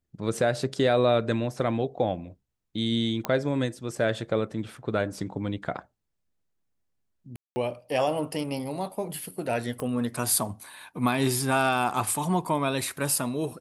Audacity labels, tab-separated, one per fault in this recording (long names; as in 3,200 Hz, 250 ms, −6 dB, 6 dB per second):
3.250000	3.250000	click −13 dBFS
7.360000	7.560000	drop-out 200 ms
9.800000	9.800000	click −20 dBFS